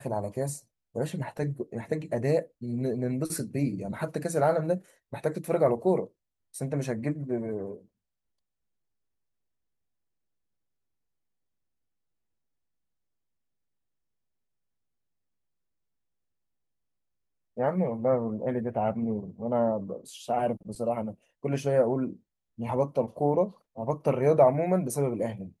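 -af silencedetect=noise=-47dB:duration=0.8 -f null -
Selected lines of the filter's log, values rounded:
silence_start: 7.81
silence_end: 17.57 | silence_duration: 9.76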